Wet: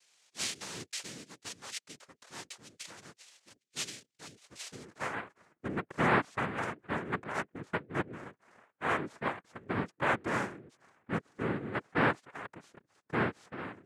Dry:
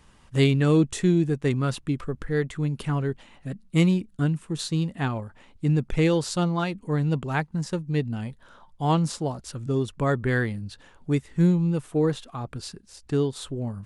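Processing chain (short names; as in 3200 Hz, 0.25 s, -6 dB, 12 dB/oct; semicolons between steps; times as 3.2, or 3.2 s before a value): band-pass sweep 3500 Hz -> 570 Hz, 4.34–5.23; noise vocoder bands 3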